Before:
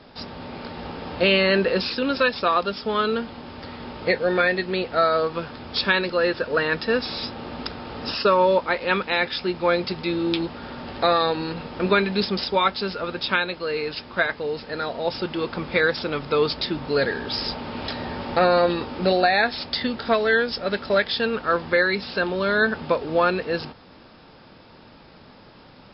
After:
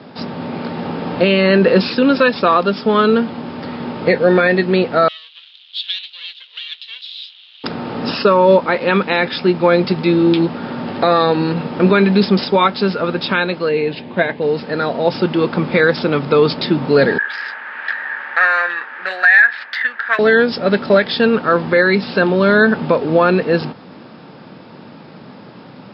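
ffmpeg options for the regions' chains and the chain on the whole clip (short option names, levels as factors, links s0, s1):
-filter_complex "[0:a]asettb=1/sr,asplit=3[s0][s1][s2];[s0]atrim=end=5.084[s3];[s1]atrim=start=5.08:end=7.64,asetpts=PTS-STARTPTS,afade=t=in:d=0.004:c=qsin,afade=t=out:st=2.556:d=0.004:c=qsin,aeval=exprs='max(val(0),0)':c=same,asuperpass=centerf=3400:order=4:qfactor=3.3,acontrast=56[s4];[s2]atrim=start=7.636[s5];[s3][s4]acrossfade=d=0.004:c1=hsin:c2=qsin[s6];[s6][s5]acrossfade=d=0.004:c1=qsin:c2=hsin,asettb=1/sr,asplit=3[s7][s8][s9];[s7]atrim=end=13.694[s10];[s8]atrim=start=13.69:end=14.42,asetpts=PTS-STARTPTS,afade=t=in:d=0.004:c=qsin,afade=t=out:st=0.726:d=0.004:c=qsin,lowpass=f=3700:w=0.5412,lowpass=f=3700:w=1.3066,equalizer=f=1300:t=o:w=0.45:g=-14[s11];[s9]atrim=start=14.416[s12];[s10][s11]acrossfade=d=0.004:c1=hsin:c2=qsin[s13];[s13][s12]acrossfade=d=0.004:c1=qsin:c2=hsin,asettb=1/sr,asplit=3[s14][s15][s16];[s14]atrim=end=17.184[s17];[s15]atrim=start=17.18:end=20.19,asetpts=PTS-STARTPTS,afade=t=in:d=0.004:c=qsin,afade=t=out:st=3.006:d=0.004:c=qsin,adynamicsmooth=sensitivity=1.5:basefreq=2300,highpass=f=1700:t=q:w=9,highshelf=f=3000:g=-11[s18];[s16]atrim=start=20.186[s19];[s17][s18]acrossfade=d=0.004:c1=hsin:c2=qsin[s20];[s20][s19]acrossfade=d=0.004:c1=qsin:c2=hsin,highpass=f=150:w=0.5412,highpass=f=150:w=1.3066,aemphasis=mode=reproduction:type=bsi,alimiter=level_in=3.16:limit=0.891:release=50:level=0:latency=1,volume=0.841"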